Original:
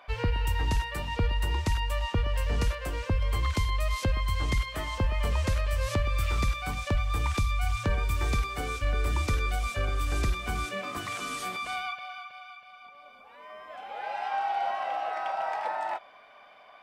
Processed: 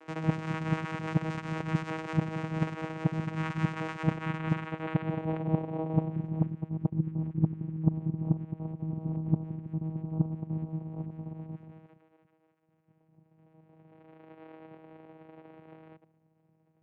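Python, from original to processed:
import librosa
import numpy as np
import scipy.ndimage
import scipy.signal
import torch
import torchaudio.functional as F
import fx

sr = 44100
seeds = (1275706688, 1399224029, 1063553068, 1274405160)

y = fx.local_reverse(x, sr, ms=76.0)
y = fx.filter_sweep_lowpass(y, sr, from_hz=1900.0, to_hz=230.0, start_s=3.94, end_s=6.87, q=1.7)
y = fx.vocoder(y, sr, bands=4, carrier='saw', carrier_hz=159.0)
y = y * 10.0 ** (3.0 / 20.0)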